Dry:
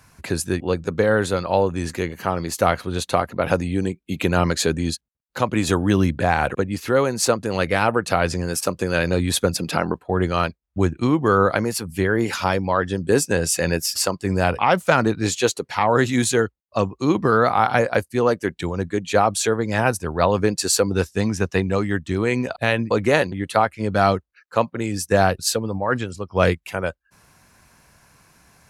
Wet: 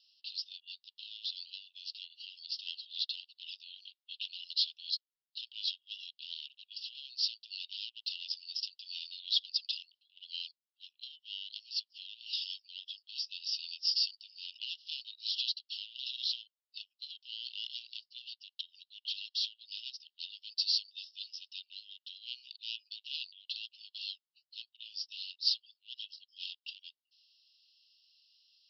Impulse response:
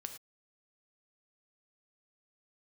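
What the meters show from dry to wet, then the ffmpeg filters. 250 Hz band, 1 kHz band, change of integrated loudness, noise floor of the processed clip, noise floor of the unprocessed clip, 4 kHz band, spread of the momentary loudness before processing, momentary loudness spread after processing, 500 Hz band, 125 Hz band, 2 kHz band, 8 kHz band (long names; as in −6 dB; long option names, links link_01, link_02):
below −40 dB, below −40 dB, −16.5 dB, below −85 dBFS, −67 dBFS, −3.0 dB, 7 LU, 15 LU, below −40 dB, below −40 dB, −28.0 dB, −30.5 dB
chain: -af "aeval=exprs='0.75*(cos(1*acos(clip(val(0)/0.75,-1,1)))-cos(1*PI/2))+0.075*(cos(3*acos(clip(val(0)/0.75,-1,1)))-cos(3*PI/2))+0.0668*(cos(5*acos(clip(val(0)/0.75,-1,1)))-cos(5*PI/2))':channel_layout=same,asoftclip=type=tanh:threshold=-11.5dB,asuperpass=centerf=3900:order=20:qfactor=1.5,volume=-2.5dB"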